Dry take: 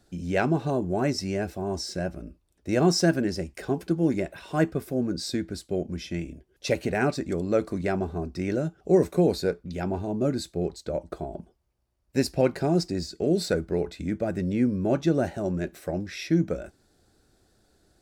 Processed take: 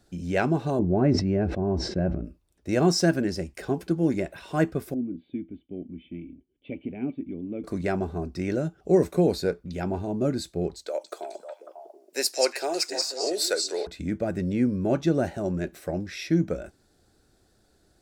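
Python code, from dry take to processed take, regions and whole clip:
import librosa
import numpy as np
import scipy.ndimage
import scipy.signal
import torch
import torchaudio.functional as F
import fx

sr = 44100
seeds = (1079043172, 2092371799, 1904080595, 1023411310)

y = fx.chain(x, sr, fx.lowpass(hz=2800.0, slope=12),
    fx.tilt_shelf(db=6.5, hz=710.0),
    fx.sustainer(db_per_s=61.0), at=(0.79, 2.25))
y = fx.chain(y, sr, fx.formant_cascade(vowel='i'),
    fx.peak_eq(hz=870.0, db=10.0, octaves=1.4), at=(4.94, 7.64))
y = fx.chain(y, sr, fx.highpass(hz=420.0, slope=24),
    fx.high_shelf(hz=3400.0, db=10.5),
    fx.echo_stepped(ms=182, hz=5800.0, octaves=-1.4, feedback_pct=70, wet_db=-0.5), at=(10.86, 13.87))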